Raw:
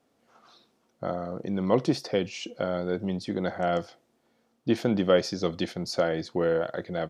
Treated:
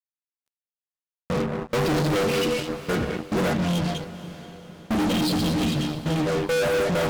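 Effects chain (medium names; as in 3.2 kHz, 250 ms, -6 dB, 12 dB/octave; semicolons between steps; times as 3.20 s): knee-point frequency compression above 3.2 kHz 1.5:1; peaking EQ 140 Hz +6.5 dB 1.5 oct; trance gate ".xxxxxx..x." 104 bpm -60 dB; treble shelf 3.7 kHz -8.5 dB; band-stop 720 Hz, Q 12; inharmonic resonator 72 Hz, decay 0.33 s, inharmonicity 0.008; gated-style reverb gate 250 ms rising, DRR 9 dB; time-frequency box 3.54–6.26 s, 330–2400 Hz -17 dB; fuzz box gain 53 dB, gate -56 dBFS; echo that smears into a reverb 514 ms, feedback 50%, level -14.5 dB; trim -8 dB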